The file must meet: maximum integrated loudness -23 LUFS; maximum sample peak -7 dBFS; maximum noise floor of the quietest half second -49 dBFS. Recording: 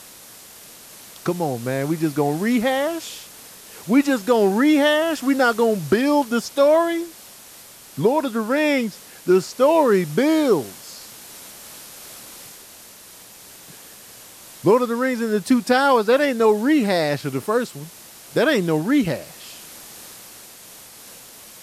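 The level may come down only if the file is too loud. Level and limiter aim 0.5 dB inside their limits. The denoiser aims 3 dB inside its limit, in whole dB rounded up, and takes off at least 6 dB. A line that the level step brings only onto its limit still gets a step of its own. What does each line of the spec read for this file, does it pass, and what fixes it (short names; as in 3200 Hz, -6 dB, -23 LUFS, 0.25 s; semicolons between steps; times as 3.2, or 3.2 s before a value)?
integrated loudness -19.5 LUFS: fail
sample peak -5.5 dBFS: fail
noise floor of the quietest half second -44 dBFS: fail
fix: denoiser 6 dB, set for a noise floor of -44 dBFS; gain -4 dB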